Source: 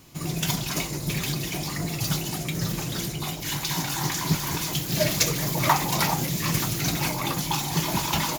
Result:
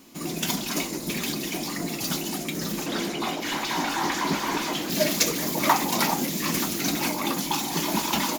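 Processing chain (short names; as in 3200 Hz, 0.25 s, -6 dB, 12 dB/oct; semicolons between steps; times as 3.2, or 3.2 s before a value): resonant low shelf 170 Hz -10 dB, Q 3; 2.86–4.9 overdrive pedal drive 18 dB, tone 1400 Hz, clips at -12.5 dBFS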